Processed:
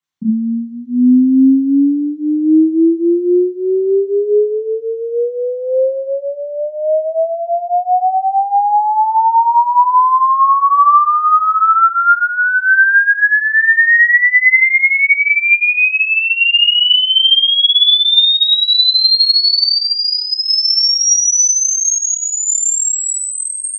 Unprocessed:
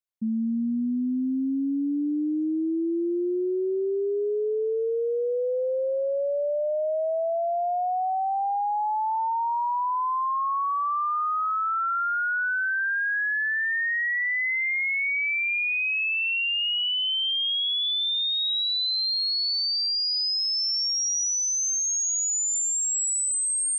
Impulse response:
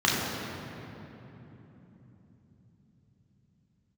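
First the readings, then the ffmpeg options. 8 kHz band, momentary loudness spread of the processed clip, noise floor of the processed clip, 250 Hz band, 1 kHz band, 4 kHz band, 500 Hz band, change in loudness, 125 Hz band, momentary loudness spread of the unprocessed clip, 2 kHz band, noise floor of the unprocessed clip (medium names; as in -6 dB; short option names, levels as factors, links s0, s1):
+10.5 dB, 10 LU, -24 dBFS, +14.0 dB, +14.5 dB, +14.0 dB, +10.0 dB, +13.5 dB, no reading, 4 LU, +14.5 dB, -26 dBFS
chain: -filter_complex "[1:a]atrim=start_sample=2205,atrim=end_sample=3969[s0];[0:a][s0]afir=irnorm=-1:irlink=0"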